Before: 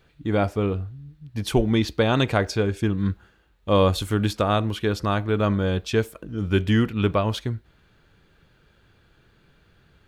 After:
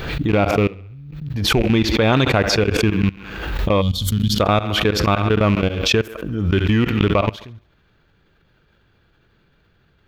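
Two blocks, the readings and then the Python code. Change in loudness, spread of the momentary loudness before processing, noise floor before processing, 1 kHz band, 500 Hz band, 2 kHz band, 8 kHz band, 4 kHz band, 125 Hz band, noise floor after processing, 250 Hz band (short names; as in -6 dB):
+5.0 dB, 11 LU, -61 dBFS, +5.0 dB, +4.0 dB, +7.5 dB, +9.0 dB, +9.0 dB, +4.5 dB, -59 dBFS, +4.5 dB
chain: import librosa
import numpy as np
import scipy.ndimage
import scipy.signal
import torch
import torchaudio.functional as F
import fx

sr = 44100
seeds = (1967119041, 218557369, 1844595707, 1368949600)

p1 = fx.rattle_buzz(x, sr, strikes_db=-20.0, level_db=-22.0)
p2 = fx.peak_eq(p1, sr, hz=9100.0, db=-11.0, octaves=0.77)
p3 = fx.level_steps(p2, sr, step_db=22)
p4 = p3 + fx.echo_thinned(p3, sr, ms=68, feedback_pct=53, hz=240.0, wet_db=-21.0, dry=0)
p5 = fx.spec_box(p4, sr, start_s=3.81, length_s=0.58, low_hz=260.0, high_hz=2900.0, gain_db=-20)
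p6 = fx.pre_swell(p5, sr, db_per_s=44.0)
y = p6 * librosa.db_to_amplitude(7.0)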